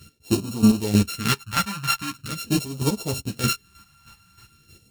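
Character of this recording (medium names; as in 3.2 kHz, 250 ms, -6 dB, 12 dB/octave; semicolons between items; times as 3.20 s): a buzz of ramps at a fixed pitch in blocks of 32 samples; phasing stages 2, 0.43 Hz, lowest notch 400–1600 Hz; chopped level 3.2 Hz, depth 65%, duty 25%; a shimmering, thickened sound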